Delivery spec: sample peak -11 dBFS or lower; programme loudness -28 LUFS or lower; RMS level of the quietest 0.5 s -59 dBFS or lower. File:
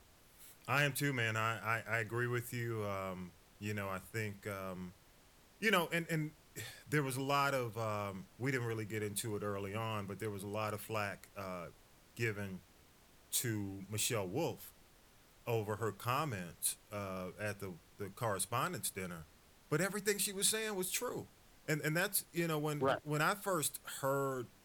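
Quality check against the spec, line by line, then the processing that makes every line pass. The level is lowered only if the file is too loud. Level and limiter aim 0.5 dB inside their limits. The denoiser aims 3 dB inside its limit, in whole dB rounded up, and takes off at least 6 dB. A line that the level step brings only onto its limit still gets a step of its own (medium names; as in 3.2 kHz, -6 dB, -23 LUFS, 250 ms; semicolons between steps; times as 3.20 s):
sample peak -18.5 dBFS: pass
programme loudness -38.0 LUFS: pass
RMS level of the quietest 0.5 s -65 dBFS: pass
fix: none needed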